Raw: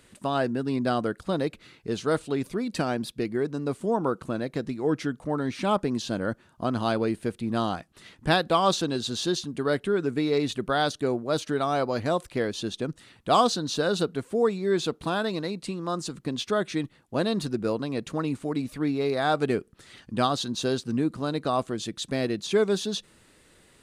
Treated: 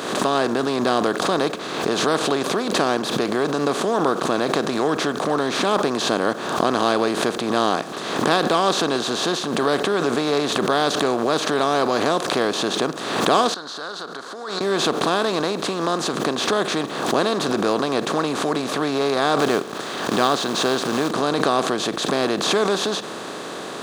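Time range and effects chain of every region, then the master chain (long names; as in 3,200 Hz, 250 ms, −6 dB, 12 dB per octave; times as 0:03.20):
0:13.54–0:14.61: downward compressor 3 to 1, threshold −38 dBFS + pair of resonant band-passes 2,500 Hz, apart 1.6 octaves
0:19.39–0:21.11: parametric band 1,600 Hz +3 dB 1.6 octaves + log-companded quantiser 6 bits
whole clip: compressor on every frequency bin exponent 0.4; high-pass filter 200 Hz 12 dB per octave; background raised ahead of every attack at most 47 dB per second; level −1 dB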